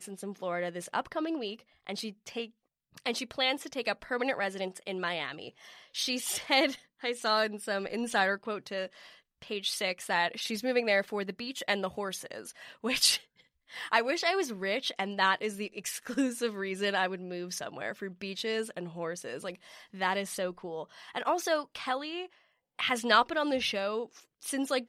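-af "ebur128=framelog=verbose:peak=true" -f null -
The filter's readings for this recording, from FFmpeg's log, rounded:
Integrated loudness:
  I:         -31.7 LUFS
  Threshold: -42.1 LUFS
Loudness range:
  LRA:         4.8 LU
  Threshold: -52.1 LUFS
  LRA low:   -35.1 LUFS
  LRA high:  -30.4 LUFS
True peak:
  Peak:       -9.4 dBFS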